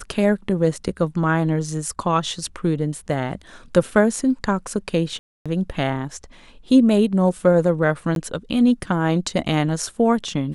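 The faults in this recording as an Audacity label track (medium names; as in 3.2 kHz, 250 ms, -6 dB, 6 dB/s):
5.190000	5.460000	dropout 266 ms
8.150000	8.160000	dropout 12 ms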